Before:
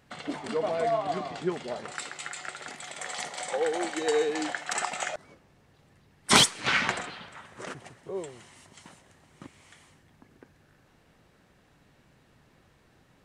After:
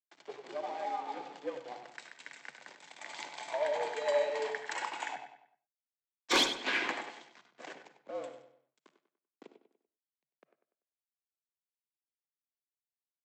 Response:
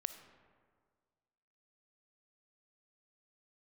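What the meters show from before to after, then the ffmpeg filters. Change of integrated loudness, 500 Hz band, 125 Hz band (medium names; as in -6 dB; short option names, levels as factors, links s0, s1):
-6.0 dB, -5.5 dB, -22.5 dB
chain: -filter_complex "[0:a]bandreject=f=1200:w=5.5,agate=range=0.0224:threshold=0.00316:ratio=3:detection=peak,equalizer=f=6100:w=1.8:g=-5.5,dynaudnorm=f=860:g=7:m=2.51,aresample=16000,aeval=exprs='sgn(val(0))*max(abs(val(0))-0.01,0)':c=same,aresample=44100,afreqshift=130,asoftclip=type=tanh:threshold=0.299,asplit=2[s0][s1];[s1]adelay=97,lowpass=f=3900:p=1,volume=0.335,asplit=2[s2][s3];[s3]adelay=97,lowpass=f=3900:p=1,volume=0.41,asplit=2[s4][s5];[s5]adelay=97,lowpass=f=3900:p=1,volume=0.41,asplit=2[s6][s7];[s7]adelay=97,lowpass=f=3900:p=1,volume=0.41[s8];[s0][s2][s4][s6][s8]amix=inputs=5:normalize=0[s9];[1:a]atrim=start_sample=2205,afade=t=out:st=0.17:d=0.01,atrim=end_sample=7938[s10];[s9][s10]afir=irnorm=-1:irlink=0,adynamicequalizer=threshold=0.0158:dfrequency=2200:dqfactor=0.7:tfrequency=2200:tqfactor=0.7:attack=5:release=100:ratio=0.375:range=2:mode=cutabove:tftype=highshelf,volume=0.473"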